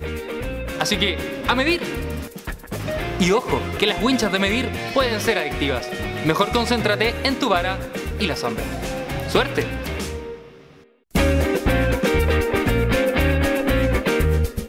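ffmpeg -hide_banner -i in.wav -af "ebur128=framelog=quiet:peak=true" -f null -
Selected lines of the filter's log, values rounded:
Integrated loudness:
  I:         -21.2 LUFS
  Threshold: -31.5 LUFS
Loudness range:
  LRA:         4.2 LU
  Threshold: -41.6 LUFS
  LRA low:   -23.9 LUFS
  LRA high:  -19.8 LUFS
True peak:
  Peak:       -3.9 dBFS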